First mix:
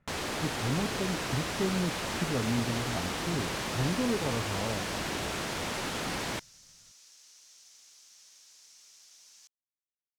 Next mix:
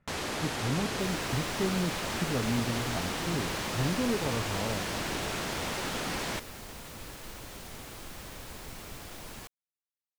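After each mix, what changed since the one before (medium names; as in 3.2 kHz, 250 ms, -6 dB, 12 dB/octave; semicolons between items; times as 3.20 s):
second sound: remove band-pass filter 5.9 kHz, Q 3.3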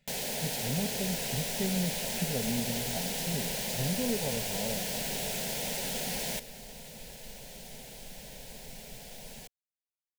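speech: remove low-pass 1.4 kHz 12 dB/octave; first sound: remove distance through air 50 m; master: add static phaser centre 320 Hz, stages 6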